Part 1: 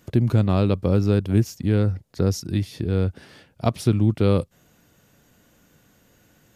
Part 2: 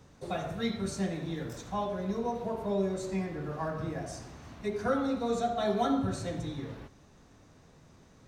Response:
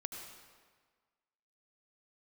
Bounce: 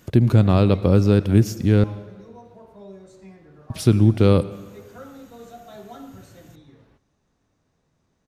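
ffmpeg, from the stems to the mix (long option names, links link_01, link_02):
-filter_complex "[0:a]volume=1.5dB,asplit=3[link_01][link_02][link_03];[link_01]atrim=end=1.84,asetpts=PTS-STARTPTS,afade=type=out:start_time=1.836:duration=0.004:curve=hsin[link_04];[link_02]atrim=start=1.84:end=3.7,asetpts=PTS-STARTPTS,volume=0[link_05];[link_03]atrim=start=3.7,asetpts=PTS-STARTPTS,afade=type=in:duration=0.004:curve=hsin[link_06];[link_04][link_05][link_06]concat=n=3:v=0:a=1,asplit=2[link_07][link_08];[link_08]volume=-8.5dB[link_09];[1:a]adelay=100,volume=-12dB[link_10];[2:a]atrim=start_sample=2205[link_11];[link_09][link_11]afir=irnorm=-1:irlink=0[link_12];[link_07][link_10][link_12]amix=inputs=3:normalize=0"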